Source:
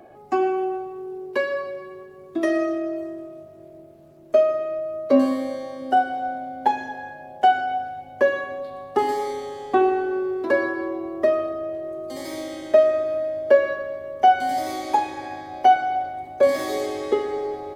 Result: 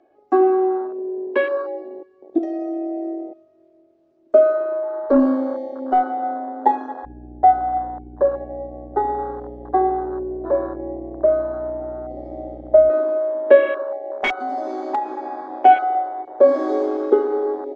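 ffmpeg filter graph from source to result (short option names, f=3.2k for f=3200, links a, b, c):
-filter_complex "[0:a]asettb=1/sr,asplit=3[a][b][c];[a]atrim=end=2.384[d];[b]atrim=start=2.38:end=3.29,asetpts=PTS-STARTPTS,afade=t=in:d=0.004:c=qsin,afade=t=out:st=0.906:d=0.004:c=qsin,highpass=210,highshelf=f=6.1k:g=11,acompressor=threshold=-28dB:ratio=10:attack=3.2:release=140:knee=1:detection=peak[e];[c]atrim=start=3.286[f];[d][e]acrossfade=d=0.004:c1=hsin:c2=qsin[g];[g][f]acrossfade=d=0.004:c1=qsin:c2=hsin,asettb=1/sr,asplit=3[h][i][j];[h]atrim=end=4.834[k];[i]atrim=start=4.83:end=6.31,asetpts=PTS-STARTPTS,afade=t=in:d=0.004:c=qsin,afade=t=out:st=1.476:d=0.004:c=qsin,aeval=exprs='val(0)+0.00794*sin(2*PI*860*n/s)':c=same,aeval=exprs='(tanh(4.47*val(0)+0.2)-tanh(0.2))/4.47':c=same[l];[j]atrim=start=6.306[m];[k][l]acrossfade=d=0.004:c1=hsin:c2=qsin[n];[n][m]acrossfade=d=0.004:c1=qsin:c2=hsin,asettb=1/sr,asplit=3[o][p][q];[o]atrim=end=7.054[r];[p]atrim=start=7.05:end=12.9,asetpts=PTS-STARTPTS,afade=t=in:d=0.004:c=qsin,afade=t=out:st=5.846:d=0.004:c=qsin,bandpass=f=710:t=q:w=1.9,aeval=exprs='val(0)+0.02*(sin(2*PI*60*n/s)+sin(2*PI*2*60*n/s)/2+sin(2*PI*3*60*n/s)/3+sin(2*PI*4*60*n/s)/4+sin(2*PI*5*60*n/s)/5)':c=same[s];[q]atrim=start=12.896[t];[r][s]acrossfade=d=0.004:c1=hsin:c2=qsin[u];[u][t]acrossfade=d=0.004:c1=qsin:c2=hsin,asettb=1/sr,asplit=3[v][w][x];[v]atrim=end=14.094[y];[w]atrim=start=14.09:end=15.48,asetpts=PTS-STARTPTS,afade=t=in:d=0.004:c=qsin,afade=t=out:st=1.386:d=0.004:c=qsin,aeval=exprs='(mod(2.82*val(0)+1,2)-1)/2.82':c=same,aecho=1:1:4.9:0.51,atrim=end_sample=61299,acompressor=threshold=-28dB:ratio=2:attack=3.2:release=140:knee=1:detection=peak[z];[x]atrim=start=15.476[aa];[y][z]acrossfade=d=0.004:c1=hsin:c2=qsin[ab];[ab][aa]acrossfade=d=0.004:c1=qsin:c2=hsin,afwtdn=0.0355,lowpass=f=6.4k:w=0.5412,lowpass=f=6.4k:w=1.3066,lowshelf=f=230:t=q:w=3:g=-7.5,volume=3dB"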